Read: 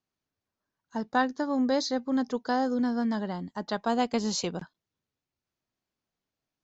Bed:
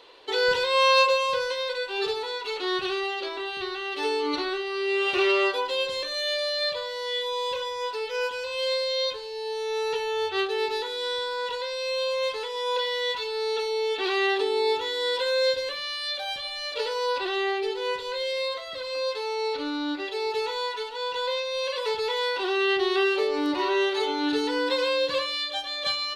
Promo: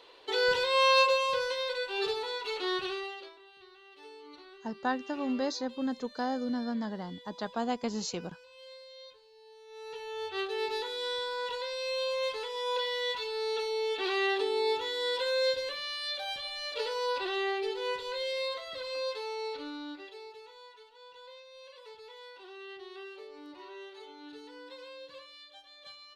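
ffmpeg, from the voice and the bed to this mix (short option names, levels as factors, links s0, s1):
-filter_complex "[0:a]adelay=3700,volume=0.531[s0];[1:a]volume=5.31,afade=t=out:st=2.67:d=0.71:silence=0.105925,afade=t=in:st=9.67:d=1.1:silence=0.11885,afade=t=out:st=18.86:d=1.52:silence=0.133352[s1];[s0][s1]amix=inputs=2:normalize=0"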